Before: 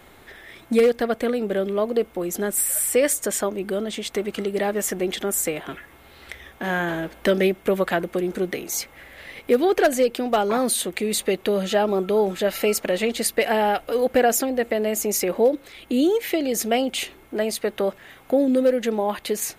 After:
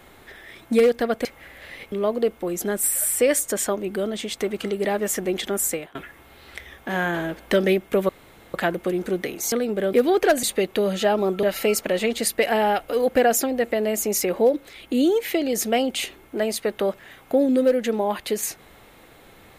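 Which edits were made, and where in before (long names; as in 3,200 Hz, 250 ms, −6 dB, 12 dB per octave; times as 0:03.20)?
0:01.25–0:01.66: swap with 0:08.81–0:09.48
0:05.42–0:05.69: fade out, to −22 dB
0:07.83: splice in room tone 0.45 s
0:09.98–0:11.13: remove
0:12.13–0:12.42: remove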